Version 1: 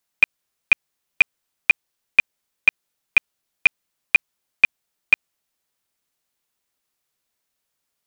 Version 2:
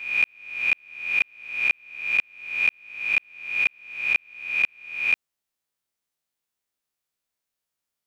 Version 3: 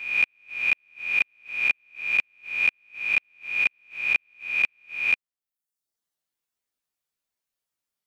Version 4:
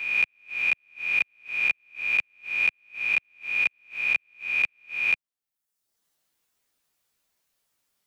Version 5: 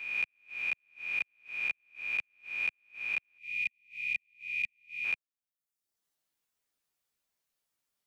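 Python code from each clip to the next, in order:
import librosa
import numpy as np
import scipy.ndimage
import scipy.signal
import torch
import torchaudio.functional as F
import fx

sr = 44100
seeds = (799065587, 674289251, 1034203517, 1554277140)

y1 = fx.spec_swells(x, sr, rise_s=0.68)
y1 = F.gain(torch.from_numpy(y1), -9.0).numpy()
y2 = fx.dereverb_blind(y1, sr, rt60_s=0.8)
y3 = fx.band_squash(y2, sr, depth_pct=40)
y3 = F.gain(torch.from_numpy(y3), -1.0).numpy()
y4 = fx.spec_erase(y3, sr, start_s=3.39, length_s=1.65, low_hz=220.0, high_hz=1900.0)
y4 = F.gain(torch.from_numpy(y4), -9.0).numpy()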